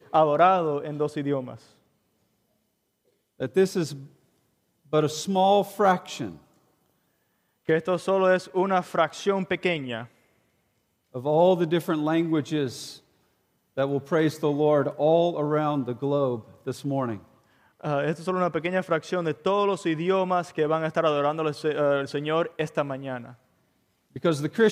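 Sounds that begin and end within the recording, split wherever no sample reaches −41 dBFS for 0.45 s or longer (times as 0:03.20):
0:03.40–0:04.06
0:04.93–0:06.36
0:07.69–0:10.06
0:11.14–0:12.97
0:13.77–0:17.20
0:17.81–0:23.33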